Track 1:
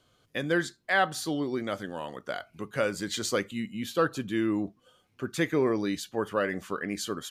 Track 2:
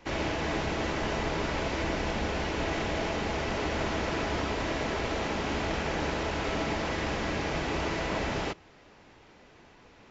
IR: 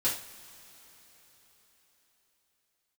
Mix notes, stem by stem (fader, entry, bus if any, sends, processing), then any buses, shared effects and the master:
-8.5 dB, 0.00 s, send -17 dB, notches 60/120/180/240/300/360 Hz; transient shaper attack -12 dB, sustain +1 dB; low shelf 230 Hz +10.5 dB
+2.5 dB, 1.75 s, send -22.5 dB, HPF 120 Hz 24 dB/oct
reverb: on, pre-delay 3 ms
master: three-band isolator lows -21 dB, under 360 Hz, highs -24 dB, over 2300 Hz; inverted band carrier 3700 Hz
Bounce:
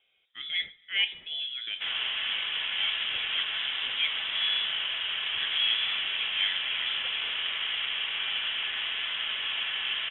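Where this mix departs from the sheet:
stem 1 -8.5 dB -> -1.0 dB; stem 2: missing HPF 120 Hz 24 dB/oct

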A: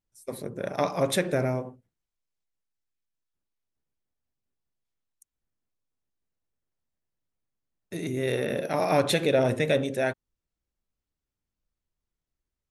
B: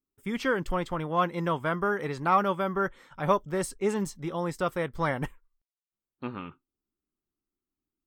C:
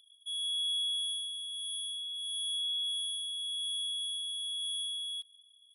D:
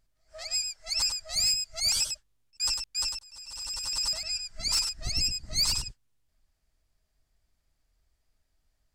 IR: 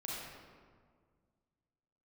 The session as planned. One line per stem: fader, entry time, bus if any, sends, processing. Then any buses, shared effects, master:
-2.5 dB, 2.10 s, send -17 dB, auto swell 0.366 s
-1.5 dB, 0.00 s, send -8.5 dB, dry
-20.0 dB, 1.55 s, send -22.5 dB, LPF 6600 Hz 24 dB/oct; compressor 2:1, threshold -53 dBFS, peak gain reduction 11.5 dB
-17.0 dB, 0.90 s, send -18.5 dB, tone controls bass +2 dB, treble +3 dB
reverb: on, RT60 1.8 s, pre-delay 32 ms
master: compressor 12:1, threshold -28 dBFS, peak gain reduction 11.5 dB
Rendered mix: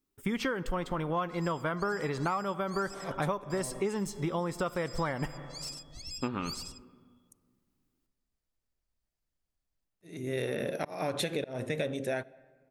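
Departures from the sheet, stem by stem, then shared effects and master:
stem B -1.5 dB -> +6.5 dB; reverb return -9.0 dB

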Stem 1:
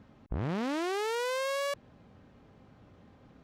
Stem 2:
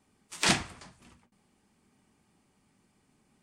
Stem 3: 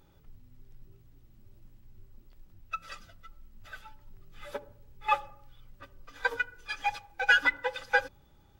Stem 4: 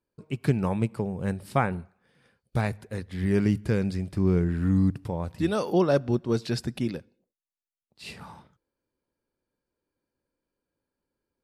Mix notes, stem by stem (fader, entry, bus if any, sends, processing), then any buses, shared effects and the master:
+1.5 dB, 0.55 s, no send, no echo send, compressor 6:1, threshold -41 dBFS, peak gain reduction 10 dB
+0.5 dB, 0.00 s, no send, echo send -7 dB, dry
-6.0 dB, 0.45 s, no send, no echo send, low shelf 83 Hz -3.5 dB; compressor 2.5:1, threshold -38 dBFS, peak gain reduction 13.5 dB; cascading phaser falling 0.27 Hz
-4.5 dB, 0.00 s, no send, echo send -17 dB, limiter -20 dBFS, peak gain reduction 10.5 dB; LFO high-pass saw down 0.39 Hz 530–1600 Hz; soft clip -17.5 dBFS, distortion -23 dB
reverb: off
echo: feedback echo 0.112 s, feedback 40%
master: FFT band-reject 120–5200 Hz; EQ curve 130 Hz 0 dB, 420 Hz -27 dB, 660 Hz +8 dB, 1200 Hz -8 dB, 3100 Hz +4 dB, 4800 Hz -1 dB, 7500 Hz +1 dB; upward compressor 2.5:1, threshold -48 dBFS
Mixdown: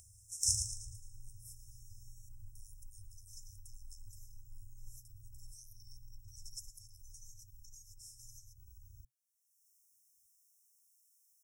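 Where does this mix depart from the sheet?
stem 1 +1.5 dB -> -8.0 dB; stem 3 -6.0 dB -> +3.5 dB

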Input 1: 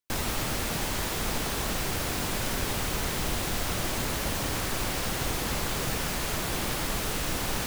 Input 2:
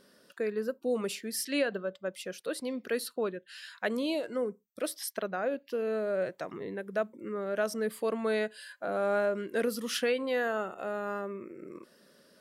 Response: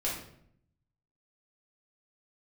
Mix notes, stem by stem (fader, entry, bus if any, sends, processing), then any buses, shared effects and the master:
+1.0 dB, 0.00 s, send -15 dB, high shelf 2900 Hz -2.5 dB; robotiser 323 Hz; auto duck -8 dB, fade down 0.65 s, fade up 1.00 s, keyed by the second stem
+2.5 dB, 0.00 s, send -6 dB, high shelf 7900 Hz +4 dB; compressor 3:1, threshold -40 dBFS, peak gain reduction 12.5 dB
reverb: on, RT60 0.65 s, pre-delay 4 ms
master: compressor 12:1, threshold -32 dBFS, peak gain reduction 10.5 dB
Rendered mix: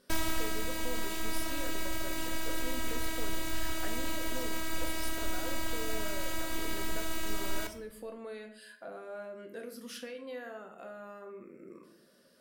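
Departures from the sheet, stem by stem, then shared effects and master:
stem 2 +2.5 dB -> -8.5 dB; master: missing compressor 12:1, threshold -32 dBFS, peak gain reduction 10.5 dB

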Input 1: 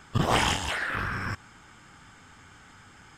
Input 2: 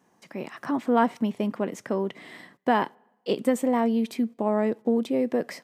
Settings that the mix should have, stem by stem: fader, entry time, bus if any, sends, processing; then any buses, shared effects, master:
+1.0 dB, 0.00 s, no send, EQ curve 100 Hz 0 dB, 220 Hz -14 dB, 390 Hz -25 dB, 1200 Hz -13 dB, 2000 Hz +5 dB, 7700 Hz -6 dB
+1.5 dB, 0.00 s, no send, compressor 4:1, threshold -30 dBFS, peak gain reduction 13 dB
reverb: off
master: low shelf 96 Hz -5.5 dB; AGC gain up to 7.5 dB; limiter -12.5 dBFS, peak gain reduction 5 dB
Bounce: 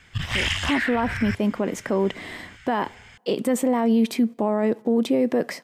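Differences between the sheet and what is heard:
stem 2: missing compressor 4:1, threshold -30 dBFS, peak gain reduction 13 dB; master: missing low shelf 96 Hz -5.5 dB

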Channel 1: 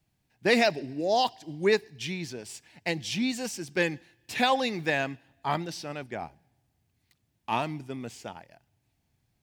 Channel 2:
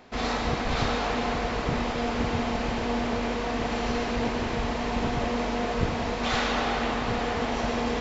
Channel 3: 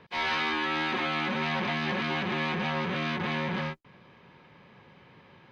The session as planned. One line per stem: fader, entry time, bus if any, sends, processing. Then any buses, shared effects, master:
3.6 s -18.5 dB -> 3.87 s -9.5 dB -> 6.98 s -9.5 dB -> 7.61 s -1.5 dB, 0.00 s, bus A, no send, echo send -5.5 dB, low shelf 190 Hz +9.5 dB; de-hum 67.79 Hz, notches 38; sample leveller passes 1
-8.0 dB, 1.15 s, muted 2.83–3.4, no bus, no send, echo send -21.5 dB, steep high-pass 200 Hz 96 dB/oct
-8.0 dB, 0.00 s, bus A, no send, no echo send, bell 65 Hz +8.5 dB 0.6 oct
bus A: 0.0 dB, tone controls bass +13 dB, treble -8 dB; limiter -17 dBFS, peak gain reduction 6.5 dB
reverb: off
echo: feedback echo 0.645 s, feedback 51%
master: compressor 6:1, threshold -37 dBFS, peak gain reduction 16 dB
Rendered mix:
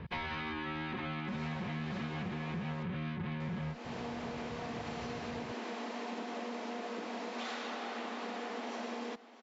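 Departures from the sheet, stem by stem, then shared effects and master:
stem 1: muted; stem 3 -8.0 dB -> +3.0 dB

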